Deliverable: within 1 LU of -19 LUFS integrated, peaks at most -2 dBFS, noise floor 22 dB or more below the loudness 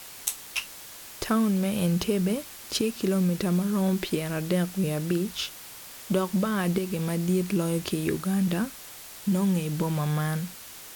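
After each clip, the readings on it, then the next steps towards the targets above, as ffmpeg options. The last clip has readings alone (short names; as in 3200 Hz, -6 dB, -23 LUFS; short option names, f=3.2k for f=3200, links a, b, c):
noise floor -44 dBFS; noise floor target -50 dBFS; loudness -27.5 LUFS; peak -8.5 dBFS; loudness target -19.0 LUFS
-> -af "afftdn=nr=6:nf=-44"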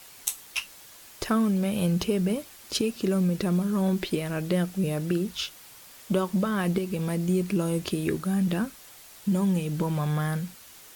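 noise floor -49 dBFS; noise floor target -50 dBFS
-> -af "afftdn=nr=6:nf=-49"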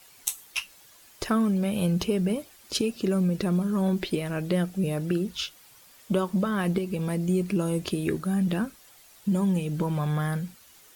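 noise floor -54 dBFS; loudness -27.5 LUFS; peak -9.0 dBFS; loudness target -19.0 LUFS
-> -af "volume=8.5dB,alimiter=limit=-2dB:level=0:latency=1"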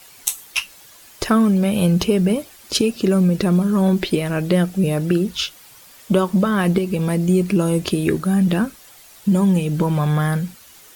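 loudness -19.0 LUFS; peak -2.0 dBFS; noise floor -46 dBFS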